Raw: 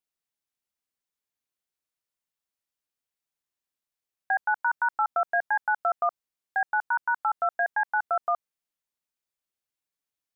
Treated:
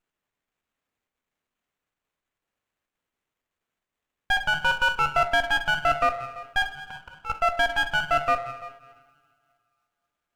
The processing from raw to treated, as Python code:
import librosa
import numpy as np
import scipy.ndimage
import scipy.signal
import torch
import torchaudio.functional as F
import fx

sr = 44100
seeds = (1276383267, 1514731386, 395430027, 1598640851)

p1 = fx.peak_eq(x, sr, hz=840.0, db=-11.0, octaves=0.31)
p2 = fx.level_steps(p1, sr, step_db=9)
p3 = p1 + (p2 * librosa.db_to_amplitude(2.5))
p4 = fx.auto_swell(p3, sr, attack_ms=790.0, at=(6.62, 7.3))
p5 = p4 + fx.echo_single(p4, sr, ms=338, db=-18.0, dry=0)
p6 = fx.rev_double_slope(p5, sr, seeds[0], early_s=0.83, late_s=2.6, knee_db=-20, drr_db=5.5)
y = fx.running_max(p6, sr, window=9)